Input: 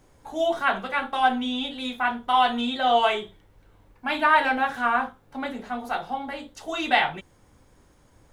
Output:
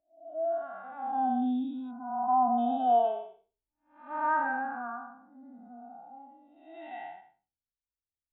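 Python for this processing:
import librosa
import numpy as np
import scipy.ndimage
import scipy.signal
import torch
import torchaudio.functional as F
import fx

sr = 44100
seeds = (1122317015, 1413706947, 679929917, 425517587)

y = fx.spec_blur(x, sr, span_ms=467.0)
y = fx.lowpass(y, sr, hz=1700.0, slope=12, at=(1.91, 2.58))
y = fx.spectral_expand(y, sr, expansion=2.5)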